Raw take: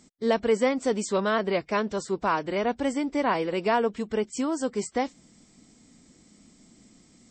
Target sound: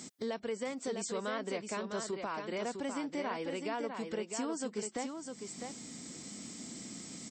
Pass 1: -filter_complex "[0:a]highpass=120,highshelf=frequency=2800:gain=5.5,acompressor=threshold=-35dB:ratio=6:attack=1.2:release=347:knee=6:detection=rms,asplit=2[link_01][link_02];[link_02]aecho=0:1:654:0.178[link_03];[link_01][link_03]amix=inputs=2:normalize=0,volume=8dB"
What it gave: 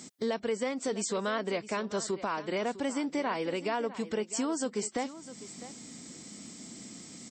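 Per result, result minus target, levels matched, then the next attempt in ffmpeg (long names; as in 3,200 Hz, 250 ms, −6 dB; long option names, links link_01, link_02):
echo-to-direct −9 dB; downward compressor: peak gain reduction −6 dB
-filter_complex "[0:a]highpass=120,highshelf=frequency=2800:gain=5.5,acompressor=threshold=-35dB:ratio=6:attack=1.2:release=347:knee=6:detection=rms,asplit=2[link_01][link_02];[link_02]aecho=0:1:654:0.501[link_03];[link_01][link_03]amix=inputs=2:normalize=0,volume=8dB"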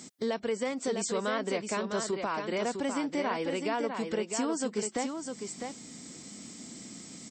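downward compressor: peak gain reduction −6 dB
-filter_complex "[0:a]highpass=120,highshelf=frequency=2800:gain=5.5,acompressor=threshold=-42dB:ratio=6:attack=1.2:release=347:knee=6:detection=rms,asplit=2[link_01][link_02];[link_02]aecho=0:1:654:0.501[link_03];[link_01][link_03]amix=inputs=2:normalize=0,volume=8dB"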